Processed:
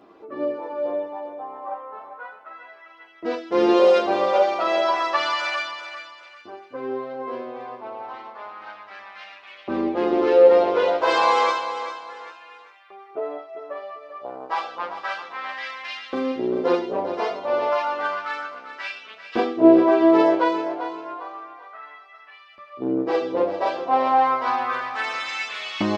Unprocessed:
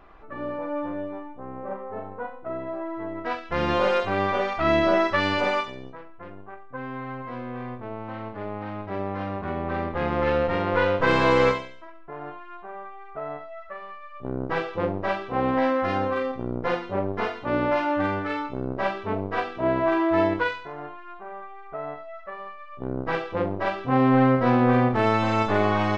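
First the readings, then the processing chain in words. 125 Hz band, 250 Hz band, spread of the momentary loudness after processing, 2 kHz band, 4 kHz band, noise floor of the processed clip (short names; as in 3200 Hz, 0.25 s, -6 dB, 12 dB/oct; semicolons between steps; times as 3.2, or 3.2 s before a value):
under -15 dB, +1.5 dB, 22 LU, -0.5 dB, +4.0 dB, -48 dBFS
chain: EQ curve 410 Hz 0 dB, 1800 Hz -8 dB, 5100 Hz +8 dB; LFO high-pass saw up 0.31 Hz 260–2900 Hz; chorus voices 4, 0.56 Hz, delay 10 ms, depth 1.5 ms; high shelf 4400 Hz -8.5 dB; on a send: feedback echo 0.395 s, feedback 32%, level -10.5 dB; on the sum: gain +6.5 dB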